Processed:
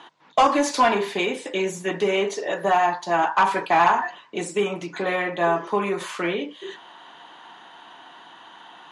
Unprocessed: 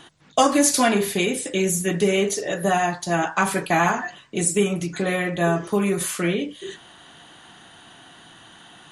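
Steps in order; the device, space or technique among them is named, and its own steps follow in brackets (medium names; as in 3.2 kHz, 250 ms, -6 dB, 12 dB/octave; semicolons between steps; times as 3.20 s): intercom (band-pass 310–4100 Hz; peaking EQ 950 Hz +11 dB 0.43 oct; saturation -9 dBFS, distortion -17 dB)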